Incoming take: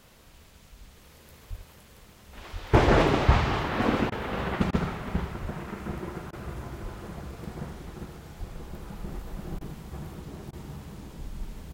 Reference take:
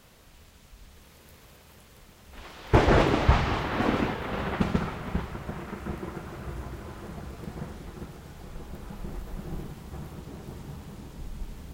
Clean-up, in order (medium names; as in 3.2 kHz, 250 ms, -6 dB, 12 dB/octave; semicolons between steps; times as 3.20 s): de-plosive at 1.49/2.52/5.41/6.82/8.39 s; interpolate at 4.10/4.71/6.31/9.59/10.51 s, 18 ms; inverse comb 77 ms -9.5 dB